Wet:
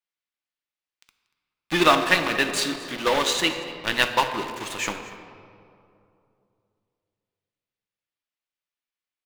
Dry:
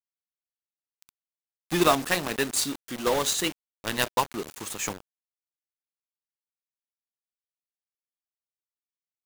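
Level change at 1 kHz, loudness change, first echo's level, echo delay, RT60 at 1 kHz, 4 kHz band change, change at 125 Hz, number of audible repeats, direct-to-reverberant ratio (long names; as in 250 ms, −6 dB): +5.0 dB, +4.0 dB, −19.0 dB, 236 ms, 2.5 s, +6.0 dB, 0.0 dB, 1, 6.0 dB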